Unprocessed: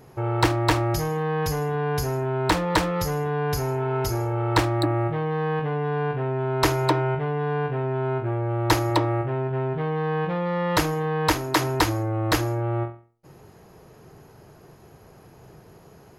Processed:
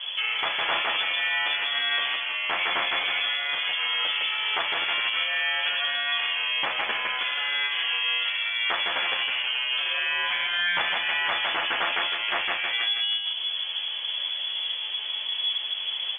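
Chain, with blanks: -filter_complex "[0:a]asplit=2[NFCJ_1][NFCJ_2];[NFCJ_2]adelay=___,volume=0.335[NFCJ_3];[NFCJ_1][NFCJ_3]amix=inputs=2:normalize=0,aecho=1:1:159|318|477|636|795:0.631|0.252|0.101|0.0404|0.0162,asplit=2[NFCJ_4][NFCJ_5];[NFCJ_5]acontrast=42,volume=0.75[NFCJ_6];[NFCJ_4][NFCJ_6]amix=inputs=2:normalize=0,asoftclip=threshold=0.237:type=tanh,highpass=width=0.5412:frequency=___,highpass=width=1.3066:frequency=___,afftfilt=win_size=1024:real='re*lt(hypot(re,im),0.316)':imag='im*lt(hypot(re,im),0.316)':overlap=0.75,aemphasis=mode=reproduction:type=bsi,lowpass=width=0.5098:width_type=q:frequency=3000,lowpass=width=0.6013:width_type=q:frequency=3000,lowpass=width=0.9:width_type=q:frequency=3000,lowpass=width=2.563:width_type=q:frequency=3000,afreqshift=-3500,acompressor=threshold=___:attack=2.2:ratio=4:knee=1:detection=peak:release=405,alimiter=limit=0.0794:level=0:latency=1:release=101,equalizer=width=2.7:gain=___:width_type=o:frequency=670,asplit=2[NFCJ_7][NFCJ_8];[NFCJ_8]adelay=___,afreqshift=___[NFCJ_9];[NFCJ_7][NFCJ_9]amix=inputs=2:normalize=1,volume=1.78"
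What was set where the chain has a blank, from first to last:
31, 89, 89, 0.0447, 11.5, 10.5, 0.29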